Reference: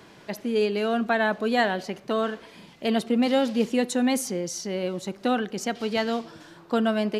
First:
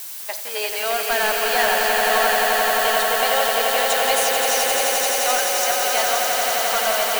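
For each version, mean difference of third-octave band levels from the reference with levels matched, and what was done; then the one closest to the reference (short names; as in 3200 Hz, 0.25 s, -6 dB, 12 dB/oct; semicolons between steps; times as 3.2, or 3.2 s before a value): 16.0 dB: HPF 660 Hz 24 dB/oct; sample leveller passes 3; added noise blue -30 dBFS; on a send: swelling echo 87 ms, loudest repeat 8, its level -5.5 dB; on the sum: gain -3.5 dB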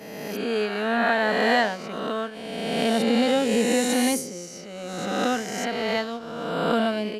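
7.5 dB: spectral swells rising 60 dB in 2.21 s; notch 380 Hz, Q 12; expander -19 dBFS; backwards sustainer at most 32 dB/s; gain -1.5 dB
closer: second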